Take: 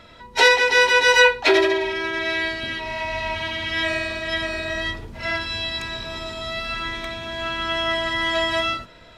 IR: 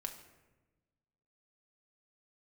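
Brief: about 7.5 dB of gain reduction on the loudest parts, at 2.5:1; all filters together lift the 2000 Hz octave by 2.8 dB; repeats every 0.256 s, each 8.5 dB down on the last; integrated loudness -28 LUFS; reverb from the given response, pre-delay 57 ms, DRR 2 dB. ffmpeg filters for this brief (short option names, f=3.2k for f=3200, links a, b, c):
-filter_complex "[0:a]equalizer=f=2k:t=o:g=3.5,acompressor=threshold=-19dB:ratio=2.5,aecho=1:1:256|512|768|1024:0.376|0.143|0.0543|0.0206,asplit=2[a][b];[1:a]atrim=start_sample=2205,adelay=57[c];[b][c]afir=irnorm=-1:irlink=0,volume=0dB[d];[a][d]amix=inputs=2:normalize=0,volume=-8.5dB"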